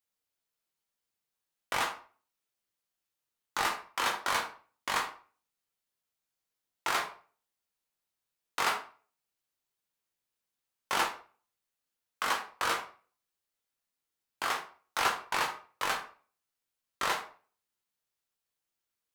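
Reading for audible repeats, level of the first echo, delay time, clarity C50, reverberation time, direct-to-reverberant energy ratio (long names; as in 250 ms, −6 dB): no echo audible, no echo audible, no echo audible, 9.0 dB, 0.40 s, 1.0 dB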